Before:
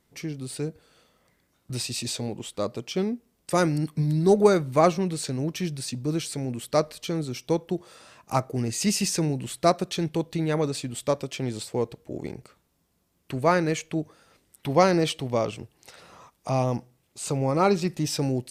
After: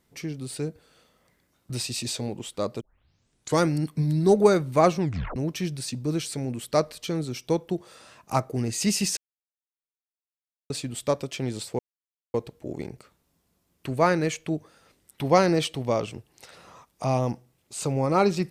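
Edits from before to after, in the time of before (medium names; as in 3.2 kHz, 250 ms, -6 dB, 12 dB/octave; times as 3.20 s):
2.81 s: tape start 0.83 s
5.00 s: tape stop 0.36 s
9.17–10.70 s: mute
11.79 s: insert silence 0.55 s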